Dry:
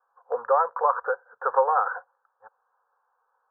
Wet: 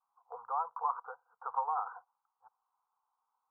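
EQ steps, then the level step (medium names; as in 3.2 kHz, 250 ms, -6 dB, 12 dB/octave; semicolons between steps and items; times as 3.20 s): static phaser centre 380 Hz, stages 8; static phaser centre 910 Hz, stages 4; -9.0 dB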